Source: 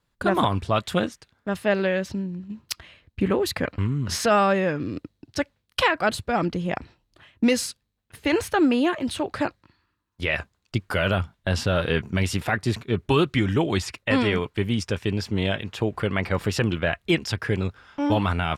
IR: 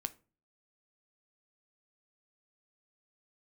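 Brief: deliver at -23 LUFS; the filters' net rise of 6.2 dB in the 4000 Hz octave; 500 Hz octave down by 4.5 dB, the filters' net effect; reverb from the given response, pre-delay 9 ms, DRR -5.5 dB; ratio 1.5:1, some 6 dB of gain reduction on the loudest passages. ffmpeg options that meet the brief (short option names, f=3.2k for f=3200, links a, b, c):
-filter_complex "[0:a]equalizer=f=500:t=o:g=-6,equalizer=f=4k:t=o:g=8.5,acompressor=threshold=-32dB:ratio=1.5,asplit=2[a][b];[1:a]atrim=start_sample=2205,adelay=9[c];[b][c]afir=irnorm=-1:irlink=0,volume=6.5dB[d];[a][d]amix=inputs=2:normalize=0,volume=-0.5dB"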